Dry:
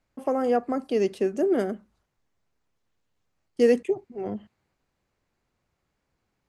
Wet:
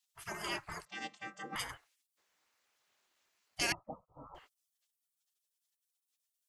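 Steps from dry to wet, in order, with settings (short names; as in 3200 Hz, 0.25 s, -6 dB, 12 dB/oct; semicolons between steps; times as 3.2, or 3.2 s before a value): 0.85–1.56 chord vocoder bare fifth, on C4; 3.72–4.35 rippled Chebyshev low-pass 1300 Hz, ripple 6 dB; spectral gate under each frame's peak -30 dB weak; gain +8.5 dB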